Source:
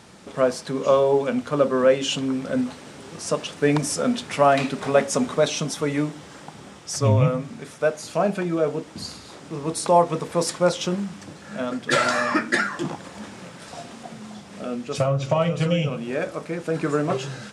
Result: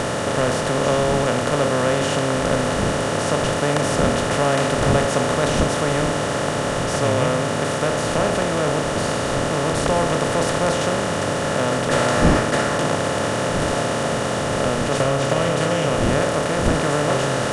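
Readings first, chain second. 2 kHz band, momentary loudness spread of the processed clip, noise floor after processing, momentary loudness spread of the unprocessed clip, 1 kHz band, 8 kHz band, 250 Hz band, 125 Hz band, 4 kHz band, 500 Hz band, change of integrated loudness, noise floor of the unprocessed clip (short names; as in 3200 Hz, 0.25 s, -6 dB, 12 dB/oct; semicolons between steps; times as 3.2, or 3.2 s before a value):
+5.5 dB, 3 LU, -23 dBFS, 19 LU, +5.0 dB, +5.5 dB, +3.0 dB, +4.5 dB, +6.0 dB, +3.0 dB, +3.0 dB, -44 dBFS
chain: per-bin compression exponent 0.2; wind noise 240 Hz -21 dBFS; gain -9 dB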